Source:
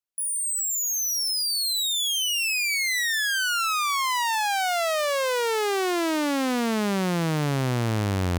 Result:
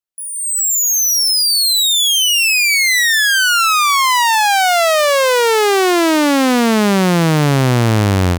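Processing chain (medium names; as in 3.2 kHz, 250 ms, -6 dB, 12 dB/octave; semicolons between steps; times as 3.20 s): level rider gain up to 12 dB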